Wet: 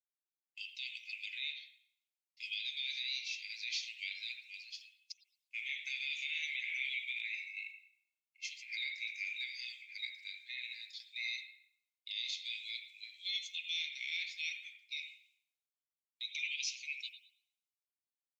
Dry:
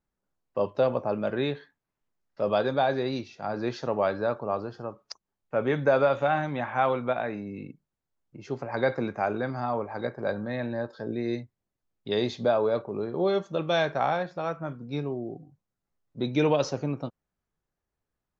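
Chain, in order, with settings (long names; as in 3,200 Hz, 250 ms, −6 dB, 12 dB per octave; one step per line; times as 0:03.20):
Chebyshev high-pass filter 2,100 Hz, order 8
downward compressor, threshold −47 dBFS, peak gain reduction 14.5 dB
brickwall limiter −42.5 dBFS, peak gain reduction 12 dB
convolution reverb RT60 0.80 s, pre-delay 65 ms, DRR 4.5 dB
multiband upward and downward expander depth 70%
level +13 dB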